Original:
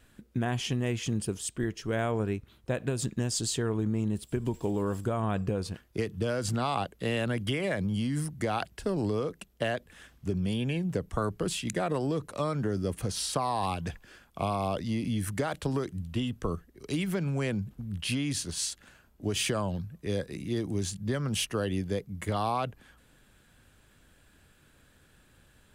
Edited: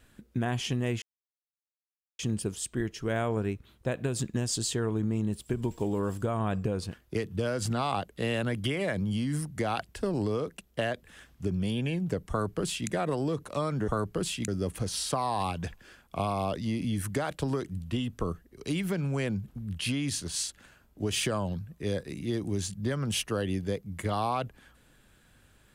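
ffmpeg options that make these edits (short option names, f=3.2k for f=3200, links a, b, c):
-filter_complex "[0:a]asplit=4[a][b][c][d];[a]atrim=end=1.02,asetpts=PTS-STARTPTS,afade=t=out:st=1.016:d=0.004:c=hsin,apad=pad_dur=1.17[e];[b]atrim=start=1.02:end=12.712,asetpts=PTS-STARTPTS,afade=t=in:d=0.004:c=hsin[f];[c]atrim=start=11.128:end=11.732[g];[d]atrim=start=12.708[h];[e][f]concat=n=2:v=0:a=1[i];[i][g]acrossfade=d=0.004:c1=hsin:c2=hsin[j];[j][h]acrossfade=d=0.004:c1=hsin:c2=hsin"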